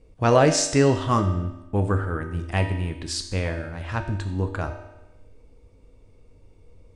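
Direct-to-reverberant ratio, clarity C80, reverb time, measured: 4.0 dB, 10.0 dB, 1.0 s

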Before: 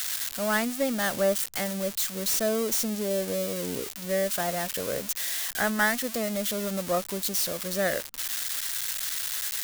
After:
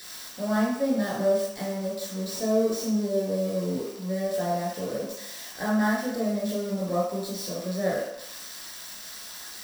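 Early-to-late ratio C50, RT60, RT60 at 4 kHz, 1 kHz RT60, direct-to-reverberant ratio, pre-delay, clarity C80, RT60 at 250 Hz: 1.5 dB, 0.75 s, 0.70 s, 0.80 s, −6.5 dB, 14 ms, 4.5 dB, 0.55 s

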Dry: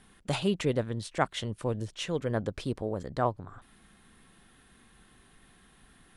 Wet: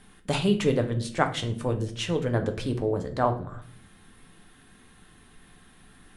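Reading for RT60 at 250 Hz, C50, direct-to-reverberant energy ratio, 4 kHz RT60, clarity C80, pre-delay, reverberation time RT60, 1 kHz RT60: 0.90 s, 11.5 dB, 4.5 dB, 0.40 s, 16.0 dB, 7 ms, 0.55 s, 0.45 s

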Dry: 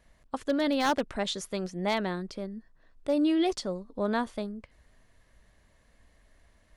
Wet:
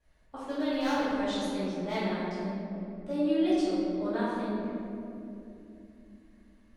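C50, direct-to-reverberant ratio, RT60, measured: −4.0 dB, −14.0 dB, 2.9 s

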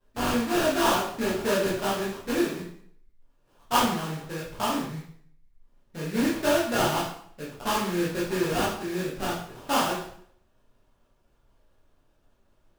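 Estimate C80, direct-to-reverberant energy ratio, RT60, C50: 7.5 dB, −7.5 dB, 0.60 s, 3.5 dB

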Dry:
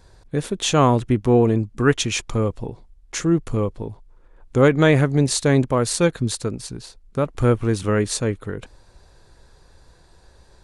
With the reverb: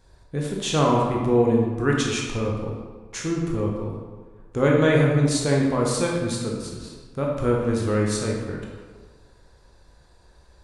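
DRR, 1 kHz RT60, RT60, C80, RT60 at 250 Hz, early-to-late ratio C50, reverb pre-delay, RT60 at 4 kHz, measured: −2.5 dB, 1.5 s, 1.5 s, 3.5 dB, 1.4 s, 1.0 dB, 14 ms, 0.95 s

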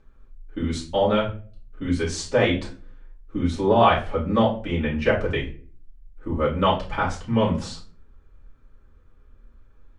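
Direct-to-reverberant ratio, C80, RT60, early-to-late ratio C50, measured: −9.0 dB, 15.0 dB, 0.40 s, 9.0 dB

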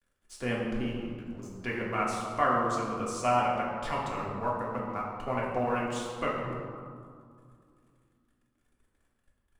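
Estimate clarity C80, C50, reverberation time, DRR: 2.5 dB, 1.0 dB, 2.2 s, −4.5 dB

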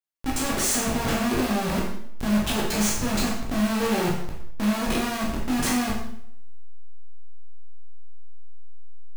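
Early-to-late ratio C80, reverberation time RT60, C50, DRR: 6.0 dB, 0.70 s, 3.0 dB, −4.5 dB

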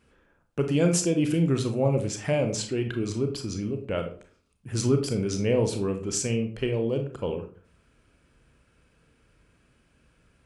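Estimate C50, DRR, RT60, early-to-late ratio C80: 9.5 dB, 5.5 dB, 0.45 s, 14.0 dB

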